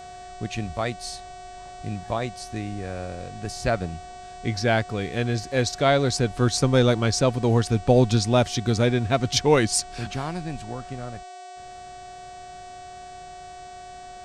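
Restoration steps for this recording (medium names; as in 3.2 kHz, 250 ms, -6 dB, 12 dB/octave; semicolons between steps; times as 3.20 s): de-hum 376.8 Hz, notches 23; band-stop 720 Hz, Q 30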